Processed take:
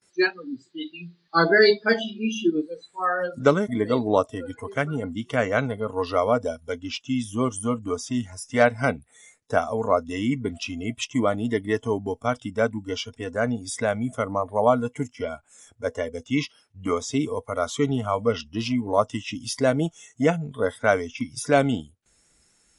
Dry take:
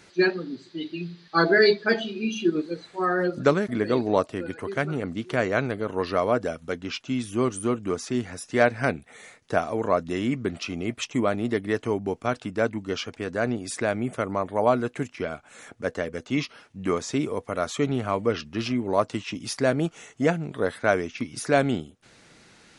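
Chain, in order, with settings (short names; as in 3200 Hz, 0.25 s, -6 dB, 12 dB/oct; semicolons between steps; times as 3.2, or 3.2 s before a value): gate with hold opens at -44 dBFS; spectral noise reduction 17 dB; gain +2 dB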